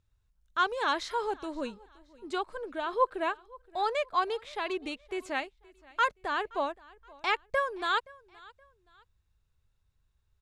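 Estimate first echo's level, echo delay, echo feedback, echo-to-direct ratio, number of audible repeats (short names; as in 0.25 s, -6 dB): -23.5 dB, 0.522 s, 34%, -23.0 dB, 2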